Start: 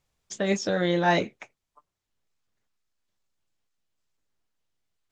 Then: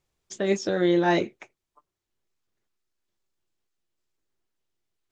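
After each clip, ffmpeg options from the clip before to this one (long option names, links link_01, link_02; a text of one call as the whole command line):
ffmpeg -i in.wav -af "equalizer=frequency=360:width=4.1:gain=9.5,volume=-2dB" out.wav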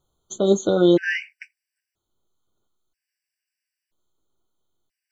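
ffmpeg -i in.wav -af "afftfilt=real='re*gt(sin(2*PI*0.51*pts/sr)*(1-2*mod(floor(b*sr/1024/1500),2)),0)':imag='im*gt(sin(2*PI*0.51*pts/sr)*(1-2*mod(floor(b*sr/1024/1500),2)),0)':win_size=1024:overlap=0.75,volume=6.5dB" out.wav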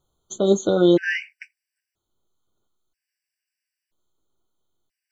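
ffmpeg -i in.wav -af anull out.wav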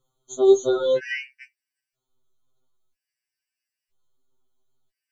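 ffmpeg -i in.wav -af "afftfilt=real='re*2.45*eq(mod(b,6),0)':imag='im*2.45*eq(mod(b,6),0)':win_size=2048:overlap=0.75" out.wav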